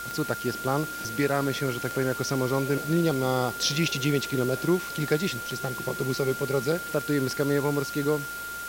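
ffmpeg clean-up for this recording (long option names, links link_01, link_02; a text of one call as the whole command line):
ffmpeg -i in.wav -af "adeclick=threshold=4,bandreject=frequency=54.4:width_type=h:width=4,bandreject=frequency=108.8:width_type=h:width=4,bandreject=frequency=163.2:width_type=h:width=4,bandreject=frequency=217.6:width_type=h:width=4,bandreject=frequency=1400:width=30,afwtdn=0.0089" out.wav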